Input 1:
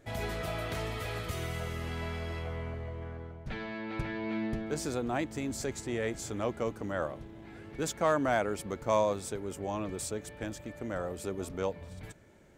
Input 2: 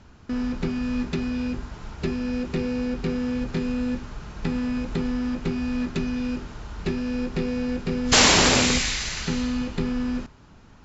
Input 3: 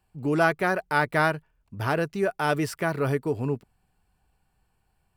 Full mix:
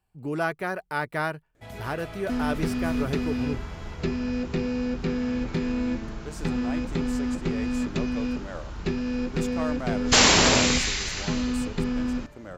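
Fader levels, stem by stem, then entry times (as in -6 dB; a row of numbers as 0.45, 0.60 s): -5.0, -1.0, -5.5 dB; 1.55, 2.00, 0.00 s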